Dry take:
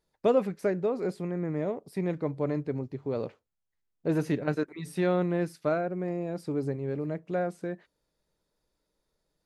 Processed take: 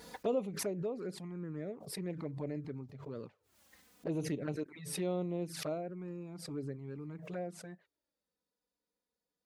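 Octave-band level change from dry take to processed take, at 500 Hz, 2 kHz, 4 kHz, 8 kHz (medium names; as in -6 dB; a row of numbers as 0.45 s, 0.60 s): -10.0 dB, -11.0 dB, +1.5 dB, +7.0 dB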